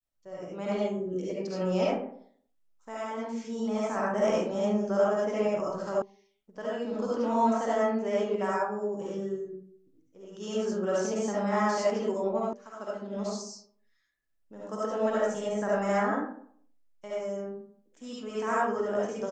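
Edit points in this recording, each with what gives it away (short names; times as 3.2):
6.02 sound cut off
12.53 sound cut off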